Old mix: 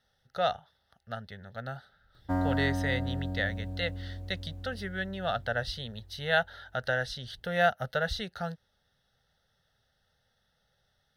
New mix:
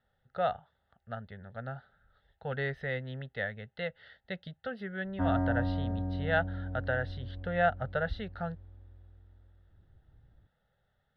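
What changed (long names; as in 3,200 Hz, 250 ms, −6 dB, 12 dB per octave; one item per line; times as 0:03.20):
background: entry +2.90 s
master: add high-frequency loss of the air 460 metres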